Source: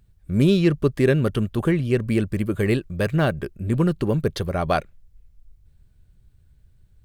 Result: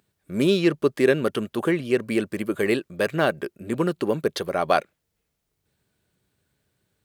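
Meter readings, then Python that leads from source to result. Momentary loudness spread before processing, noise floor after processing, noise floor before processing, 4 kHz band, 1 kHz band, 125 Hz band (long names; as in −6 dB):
7 LU, −78 dBFS, −57 dBFS, +2.0 dB, +2.0 dB, −10.5 dB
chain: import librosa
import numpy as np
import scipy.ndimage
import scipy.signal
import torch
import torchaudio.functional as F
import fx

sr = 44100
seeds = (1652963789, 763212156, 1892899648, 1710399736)

y = scipy.signal.sosfilt(scipy.signal.butter(2, 300.0, 'highpass', fs=sr, output='sos'), x)
y = F.gain(torch.from_numpy(y), 2.0).numpy()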